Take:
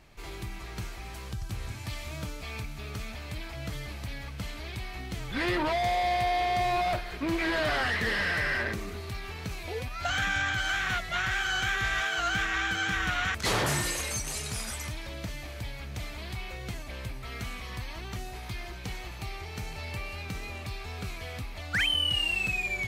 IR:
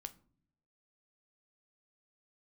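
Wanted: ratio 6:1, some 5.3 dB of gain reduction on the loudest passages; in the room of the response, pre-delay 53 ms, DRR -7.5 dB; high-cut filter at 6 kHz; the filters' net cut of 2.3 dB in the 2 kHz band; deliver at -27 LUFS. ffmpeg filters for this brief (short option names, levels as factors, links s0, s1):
-filter_complex "[0:a]lowpass=6000,equalizer=f=2000:t=o:g=-3,acompressor=threshold=0.0282:ratio=6,asplit=2[s0][s1];[1:a]atrim=start_sample=2205,adelay=53[s2];[s1][s2]afir=irnorm=-1:irlink=0,volume=3.98[s3];[s0][s3]amix=inputs=2:normalize=0,volume=1.12"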